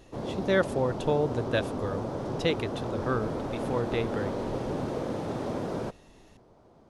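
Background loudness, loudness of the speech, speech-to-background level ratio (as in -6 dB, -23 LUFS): -33.5 LUFS, -31.0 LUFS, 2.5 dB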